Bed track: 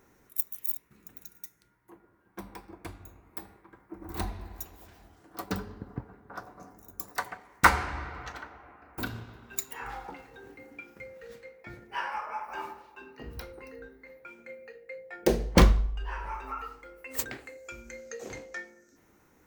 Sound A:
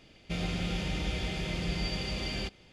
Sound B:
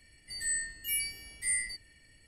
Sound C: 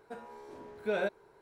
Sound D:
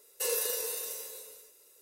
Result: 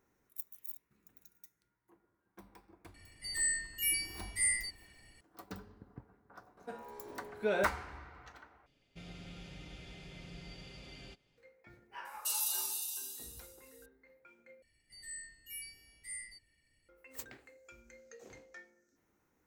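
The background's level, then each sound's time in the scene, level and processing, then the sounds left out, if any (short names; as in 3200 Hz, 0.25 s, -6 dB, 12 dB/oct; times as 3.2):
bed track -13.5 dB
2.94 add B
6.57 add C -0.5 dB
8.66 replace with A -17 dB + comb 7.2 ms, depth 39%
12.05 add D -1.5 dB + Chebyshev high-pass 2800 Hz, order 6
14.62 replace with B -13.5 dB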